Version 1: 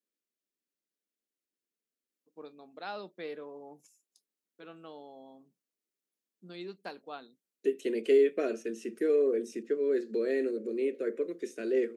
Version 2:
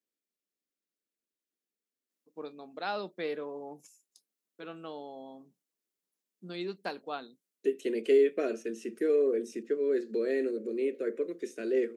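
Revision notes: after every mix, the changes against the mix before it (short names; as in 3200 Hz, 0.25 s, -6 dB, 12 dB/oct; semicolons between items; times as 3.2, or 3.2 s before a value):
first voice +5.5 dB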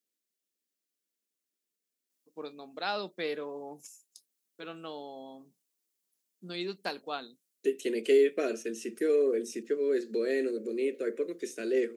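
master: add high shelf 2900 Hz +9 dB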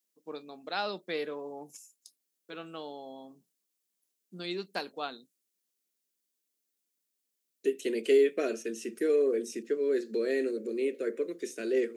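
first voice: entry -2.10 s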